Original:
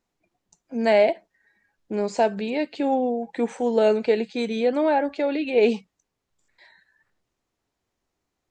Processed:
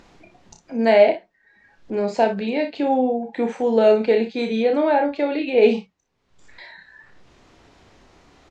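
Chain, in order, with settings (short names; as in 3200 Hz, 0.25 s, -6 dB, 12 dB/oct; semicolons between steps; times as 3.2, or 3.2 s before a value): LPF 4800 Hz 12 dB/oct; upward compressor, threshold -35 dBFS; early reflections 31 ms -6 dB, 59 ms -10.5 dB; gain +2 dB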